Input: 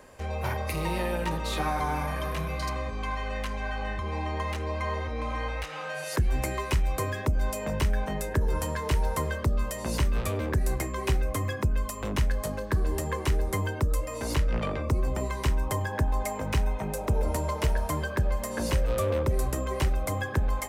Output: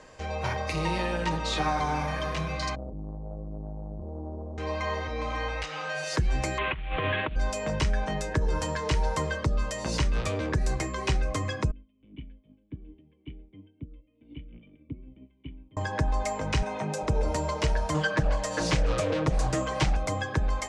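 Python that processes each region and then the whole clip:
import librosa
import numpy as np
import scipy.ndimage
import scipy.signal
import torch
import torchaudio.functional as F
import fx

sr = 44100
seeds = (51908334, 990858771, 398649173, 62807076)

y = fx.chain(x, sr, fx.steep_lowpass(hz=630.0, slope=36),
    fx.quant_float(bits=8),
    fx.transformer_sat(knee_hz=190.0), at=(2.75, 4.58))
y = fx.chain(y, sr, fx.cvsd(bps=16000),
    fx.high_shelf(hz=2500.0, db=11.5),
    fx.over_compress(threshold_db=-30.0, ratio=-1.0), at=(6.58, 7.36))
y = fx.chain(y, sr, fx.formant_cascade(vowel='i'),
    fx.upward_expand(threshold_db=-44.0, expansion=2.5), at=(11.71, 15.77))
y = fx.chain(y, sr, fx.highpass(hz=120.0, slope=24),
    fx.env_flatten(amount_pct=50), at=(16.62, 17.03))
y = fx.chain(y, sr, fx.comb(ms=6.4, depth=0.84),
    fx.doppler_dist(depth_ms=0.56), at=(17.94, 19.97))
y = scipy.signal.sosfilt(scipy.signal.butter(4, 6700.0, 'lowpass', fs=sr, output='sos'), y)
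y = fx.high_shelf(y, sr, hz=4100.0, db=7.5)
y = y + 0.3 * np.pad(y, (int(6.4 * sr / 1000.0), 0))[:len(y)]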